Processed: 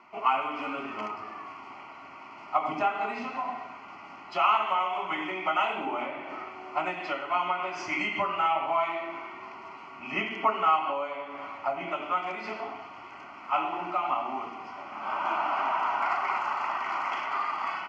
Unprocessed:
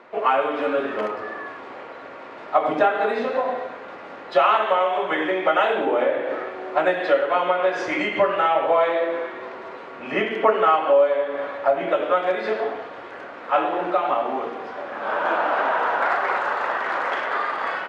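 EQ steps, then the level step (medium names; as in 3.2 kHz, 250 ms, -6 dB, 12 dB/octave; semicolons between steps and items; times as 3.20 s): peaking EQ 3.8 kHz +4 dB 2.4 oct; static phaser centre 2.5 kHz, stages 8; -4.5 dB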